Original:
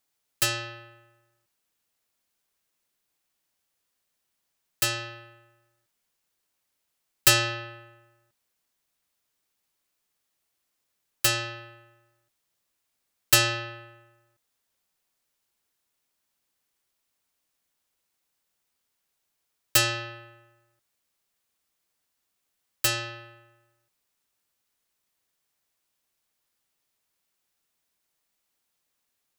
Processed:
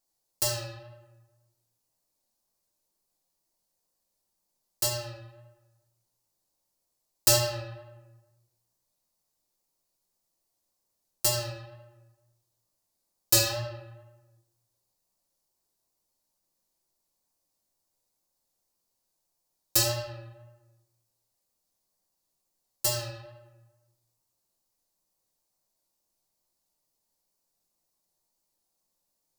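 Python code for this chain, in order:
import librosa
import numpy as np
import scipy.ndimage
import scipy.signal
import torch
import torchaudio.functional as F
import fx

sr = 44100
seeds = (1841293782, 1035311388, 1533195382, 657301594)

y = fx.band_shelf(x, sr, hz=2100.0, db=-11.0, octaves=1.7)
y = fx.hum_notches(y, sr, base_hz=50, count=7)
y = fx.wow_flutter(y, sr, seeds[0], rate_hz=2.1, depth_cents=60.0)
y = fx.room_shoebox(y, sr, seeds[1], volume_m3=100.0, walls='mixed', distance_m=0.82)
y = F.gain(torch.from_numpy(y), -2.5).numpy()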